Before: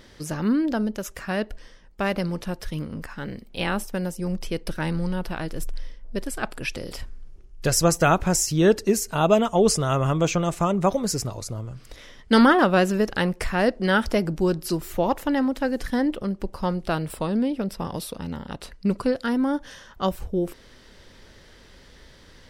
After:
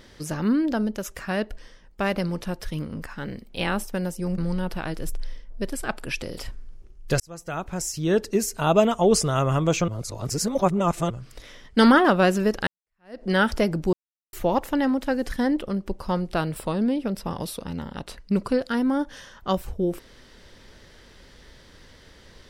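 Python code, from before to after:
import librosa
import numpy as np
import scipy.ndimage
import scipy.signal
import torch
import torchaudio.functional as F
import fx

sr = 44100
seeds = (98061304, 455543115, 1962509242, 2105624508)

y = fx.edit(x, sr, fx.cut(start_s=4.38, length_s=0.54),
    fx.fade_in_span(start_s=7.74, length_s=1.48),
    fx.reverse_span(start_s=10.42, length_s=1.22),
    fx.fade_in_span(start_s=13.21, length_s=0.57, curve='exp'),
    fx.silence(start_s=14.47, length_s=0.4), tone=tone)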